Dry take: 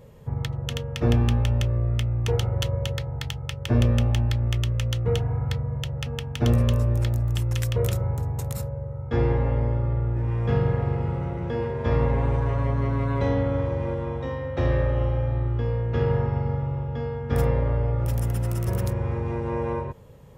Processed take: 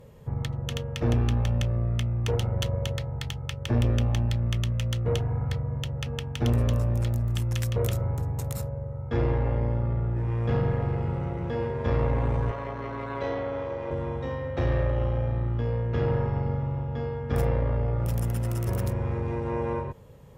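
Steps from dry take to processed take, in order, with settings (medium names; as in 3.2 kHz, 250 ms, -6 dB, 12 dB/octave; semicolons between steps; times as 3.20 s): valve stage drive 17 dB, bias 0.4; 12.51–13.91 s: three-band isolator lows -13 dB, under 340 Hz, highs -13 dB, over 7.3 kHz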